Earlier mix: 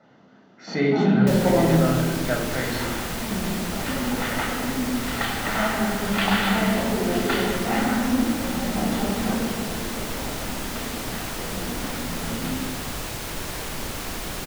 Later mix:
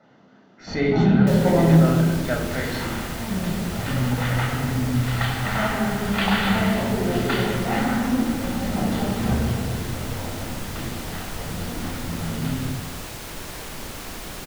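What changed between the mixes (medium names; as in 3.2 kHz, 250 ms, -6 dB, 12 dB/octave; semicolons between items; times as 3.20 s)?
first sound: remove steep high-pass 180 Hz 36 dB/octave; second sound -3.5 dB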